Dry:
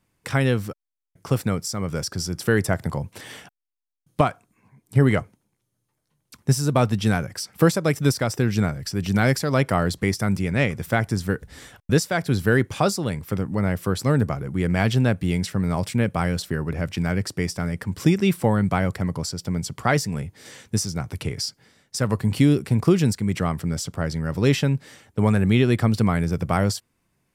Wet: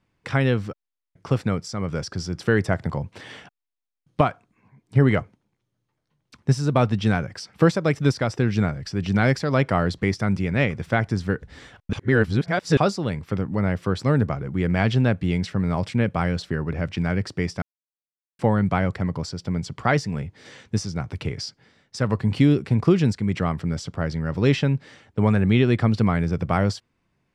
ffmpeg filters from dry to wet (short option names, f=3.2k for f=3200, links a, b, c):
-filter_complex "[0:a]asplit=5[a][b][c][d][e];[a]atrim=end=11.932[f];[b]atrim=start=11.928:end=12.772,asetpts=PTS-STARTPTS,areverse[g];[c]atrim=start=12.768:end=17.62,asetpts=PTS-STARTPTS,afade=t=out:st=4.848:d=0.004:c=hsin[h];[d]atrim=start=17.62:end=18.39,asetpts=PTS-STARTPTS,volume=0[i];[e]atrim=start=18.39,asetpts=PTS-STARTPTS,afade=t=in:d=0.004:c=hsin[j];[f][g]acrossfade=d=0.004:c1=hsin:c2=hsin[k];[h][i][j]concat=n=3:v=0:a=1[l];[k][l]acrossfade=d=0.004:c1=hsin:c2=hsin,lowpass=4.4k"